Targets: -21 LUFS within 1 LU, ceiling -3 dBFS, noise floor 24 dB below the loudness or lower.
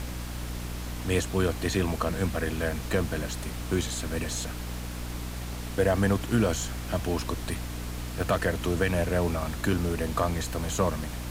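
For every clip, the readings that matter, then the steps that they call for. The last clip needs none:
hum 60 Hz; harmonics up to 300 Hz; hum level -33 dBFS; noise floor -36 dBFS; noise floor target -54 dBFS; loudness -29.5 LUFS; peak -12.5 dBFS; loudness target -21.0 LUFS
-> de-hum 60 Hz, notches 5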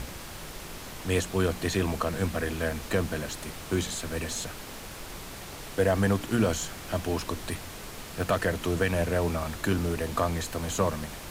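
hum none; noise floor -42 dBFS; noise floor target -54 dBFS
-> noise print and reduce 12 dB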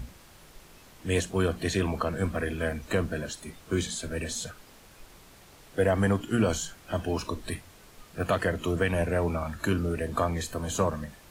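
noise floor -53 dBFS; noise floor target -54 dBFS
-> noise print and reduce 6 dB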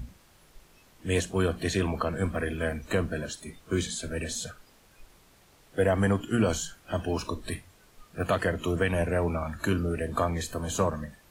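noise floor -59 dBFS; loudness -29.5 LUFS; peak -13.0 dBFS; loudness target -21.0 LUFS
-> gain +8.5 dB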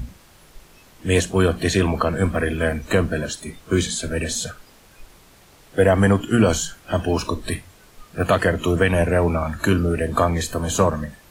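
loudness -21.0 LUFS; peak -4.5 dBFS; noise floor -51 dBFS

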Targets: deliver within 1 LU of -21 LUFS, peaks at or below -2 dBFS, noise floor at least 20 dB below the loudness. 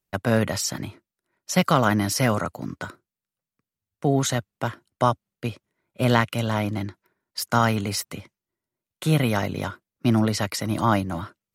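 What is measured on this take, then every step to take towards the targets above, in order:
loudness -24.5 LUFS; peak -3.5 dBFS; loudness target -21.0 LUFS
-> gain +3.5 dB; limiter -2 dBFS

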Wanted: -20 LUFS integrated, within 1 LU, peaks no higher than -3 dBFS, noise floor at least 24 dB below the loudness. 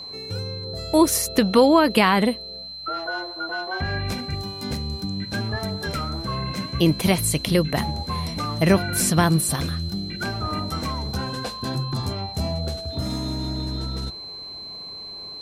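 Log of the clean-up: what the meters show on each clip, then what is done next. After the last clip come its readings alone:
ticks 29/s; steady tone 4100 Hz; tone level -34 dBFS; loudness -24.0 LUFS; peak -4.5 dBFS; loudness target -20.0 LUFS
-> de-click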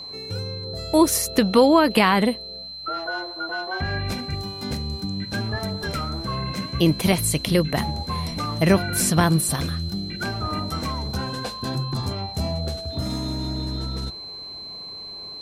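ticks 0.065/s; steady tone 4100 Hz; tone level -34 dBFS
-> notch 4100 Hz, Q 30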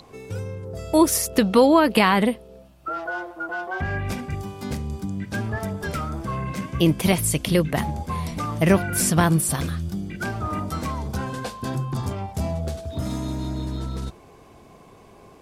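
steady tone none; loudness -24.0 LUFS; peak -4.5 dBFS; loudness target -20.0 LUFS
-> gain +4 dB; limiter -3 dBFS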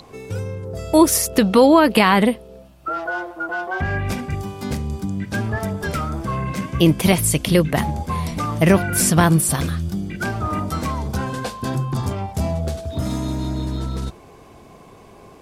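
loudness -20.0 LUFS; peak -3.0 dBFS; noise floor -45 dBFS

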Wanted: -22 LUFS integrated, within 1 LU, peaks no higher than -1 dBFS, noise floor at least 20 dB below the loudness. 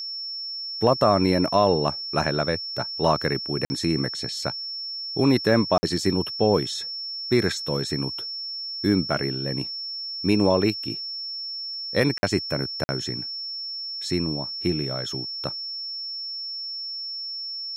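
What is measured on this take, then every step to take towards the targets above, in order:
dropouts 4; longest dropout 50 ms; steady tone 5400 Hz; tone level -30 dBFS; loudness -25.0 LUFS; peak -6.0 dBFS; loudness target -22.0 LUFS
-> interpolate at 3.65/5.78/12.18/12.84, 50 ms; notch 5400 Hz, Q 30; gain +3 dB

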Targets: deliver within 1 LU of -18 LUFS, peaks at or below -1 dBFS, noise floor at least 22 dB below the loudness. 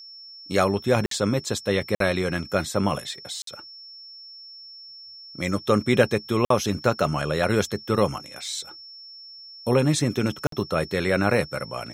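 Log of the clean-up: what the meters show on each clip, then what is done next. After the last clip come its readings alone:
dropouts 5; longest dropout 53 ms; steady tone 5400 Hz; tone level -41 dBFS; loudness -24.5 LUFS; peak -4.0 dBFS; loudness target -18.0 LUFS
-> interpolate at 1.06/1.95/3.42/6.45/10.47, 53 ms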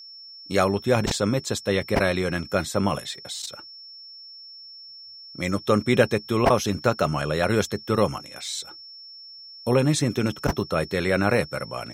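dropouts 0; steady tone 5400 Hz; tone level -41 dBFS
-> notch 5400 Hz, Q 30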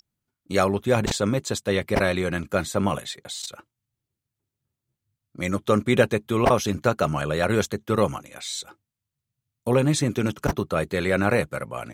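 steady tone none; loudness -24.5 LUFS; peak -4.0 dBFS; loudness target -18.0 LUFS
-> gain +6.5 dB; limiter -1 dBFS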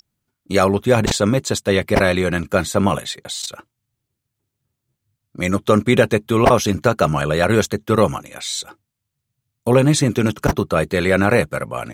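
loudness -18.0 LUFS; peak -1.0 dBFS; noise floor -80 dBFS

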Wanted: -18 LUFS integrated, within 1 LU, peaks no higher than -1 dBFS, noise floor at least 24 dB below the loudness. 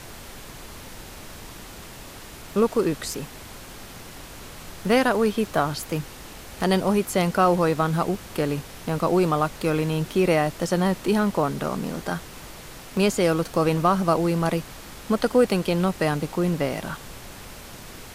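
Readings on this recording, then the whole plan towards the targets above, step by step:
dropouts 4; longest dropout 1.4 ms; noise floor -42 dBFS; noise floor target -48 dBFS; loudness -23.5 LUFS; peak -7.0 dBFS; loudness target -18.0 LUFS
-> interpolate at 3.1/8.15/12.97/16.69, 1.4 ms; noise print and reduce 6 dB; gain +5.5 dB

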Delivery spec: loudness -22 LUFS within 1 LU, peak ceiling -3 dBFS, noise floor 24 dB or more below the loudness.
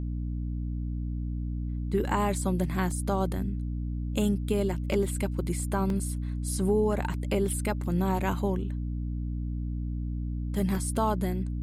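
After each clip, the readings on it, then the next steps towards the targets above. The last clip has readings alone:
dropouts 3; longest dropout 1.9 ms; hum 60 Hz; harmonics up to 300 Hz; hum level -29 dBFS; loudness -30.0 LUFS; peak -14.0 dBFS; loudness target -22.0 LUFS
-> interpolate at 2.91/5.9/10.75, 1.9 ms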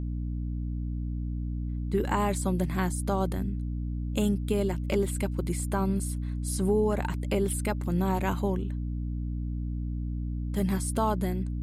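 dropouts 0; hum 60 Hz; harmonics up to 300 Hz; hum level -29 dBFS
-> de-hum 60 Hz, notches 5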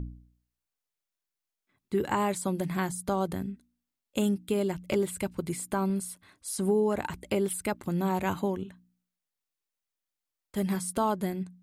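hum none; loudness -30.5 LUFS; peak -15.0 dBFS; loudness target -22.0 LUFS
-> gain +8.5 dB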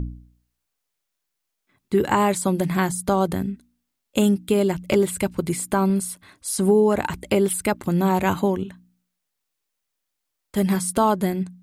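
loudness -22.0 LUFS; peak -6.5 dBFS; noise floor -80 dBFS

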